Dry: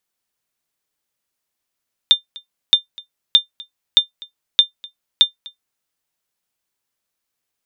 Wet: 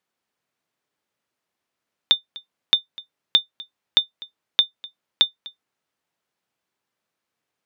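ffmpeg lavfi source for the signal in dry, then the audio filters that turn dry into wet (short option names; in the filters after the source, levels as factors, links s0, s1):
-f lavfi -i "aevalsrc='0.891*(sin(2*PI*3600*mod(t,0.62))*exp(-6.91*mod(t,0.62)/0.12)+0.0631*sin(2*PI*3600*max(mod(t,0.62)-0.25,0))*exp(-6.91*max(mod(t,0.62)-0.25,0)/0.12))':d=3.72:s=44100"
-filter_complex "[0:a]highpass=110,asplit=2[s0][s1];[s1]acompressor=threshold=0.1:ratio=6,volume=0.794[s2];[s0][s2]amix=inputs=2:normalize=0,lowpass=f=2000:p=1"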